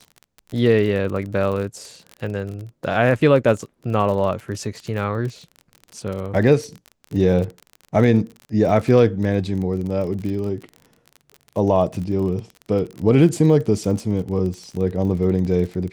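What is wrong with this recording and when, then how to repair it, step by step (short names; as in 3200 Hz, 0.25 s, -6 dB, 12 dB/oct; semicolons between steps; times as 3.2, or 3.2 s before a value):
crackle 37/s -28 dBFS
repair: de-click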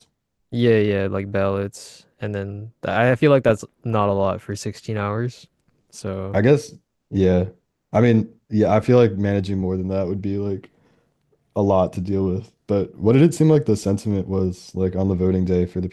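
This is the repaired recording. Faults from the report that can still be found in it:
none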